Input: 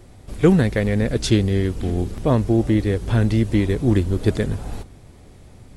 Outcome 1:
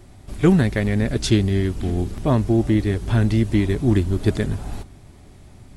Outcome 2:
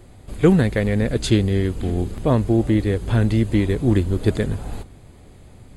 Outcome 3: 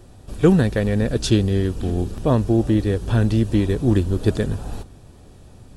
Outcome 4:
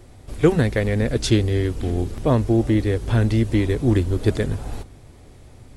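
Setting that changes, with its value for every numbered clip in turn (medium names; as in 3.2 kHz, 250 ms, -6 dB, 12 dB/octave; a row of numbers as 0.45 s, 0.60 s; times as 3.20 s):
band-stop, frequency: 490 Hz, 5.6 kHz, 2.1 kHz, 190 Hz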